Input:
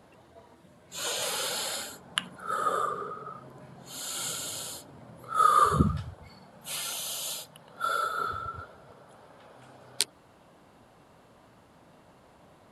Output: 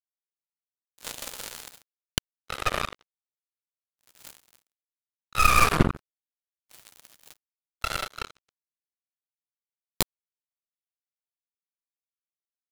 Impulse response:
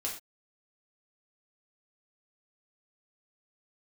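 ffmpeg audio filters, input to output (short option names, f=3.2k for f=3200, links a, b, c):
-af "acrusher=bits=3:mix=0:aa=0.5,aeval=exprs='0.75*(cos(1*acos(clip(val(0)/0.75,-1,1)))-cos(1*PI/2))+0.266*(cos(6*acos(clip(val(0)/0.75,-1,1)))-cos(6*PI/2))':c=same,volume=-1dB"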